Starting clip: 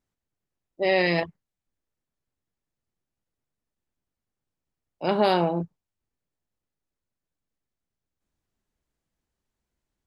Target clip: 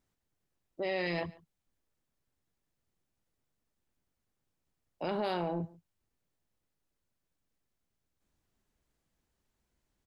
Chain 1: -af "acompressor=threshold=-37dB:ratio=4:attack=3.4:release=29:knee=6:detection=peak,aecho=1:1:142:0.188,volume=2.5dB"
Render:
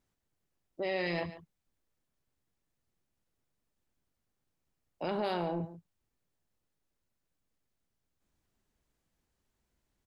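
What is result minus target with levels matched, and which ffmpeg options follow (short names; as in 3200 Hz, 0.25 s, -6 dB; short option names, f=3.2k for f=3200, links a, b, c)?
echo-to-direct +8 dB
-af "acompressor=threshold=-37dB:ratio=4:attack=3.4:release=29:knee=6:detection=peak,aecho=1:1:142:0.075,volume=2.5dB"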